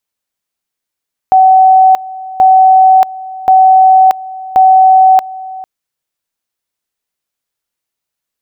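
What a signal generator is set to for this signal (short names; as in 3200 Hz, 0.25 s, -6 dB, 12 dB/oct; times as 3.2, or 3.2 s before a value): two-level tone 756 Hz -2 dBFS, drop 19.5 dB, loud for 0.63 s, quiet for 0.45 s, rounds 4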